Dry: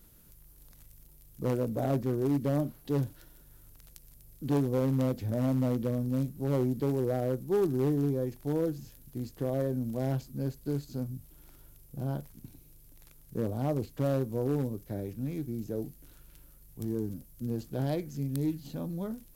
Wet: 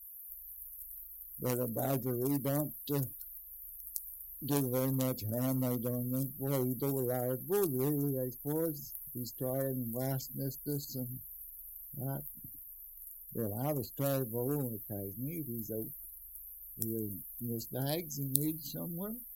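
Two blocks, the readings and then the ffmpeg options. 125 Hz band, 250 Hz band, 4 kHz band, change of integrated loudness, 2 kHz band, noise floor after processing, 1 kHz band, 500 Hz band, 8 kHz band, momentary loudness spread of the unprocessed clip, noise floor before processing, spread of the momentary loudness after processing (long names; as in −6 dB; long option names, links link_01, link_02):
−5.5 dB, −5.0 dB, +3.0 dB, −4.5 dB, −2.0 dB, −50 dBFS, −3.0 dB, −4.5 dB, +10.0 dB, 10 LU, −57 dBFS, 13 LU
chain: -af "crystalizer=i=8:c=0,afftdn=noise_reduction=30:noise_floor=-40,volume=-5.5dB"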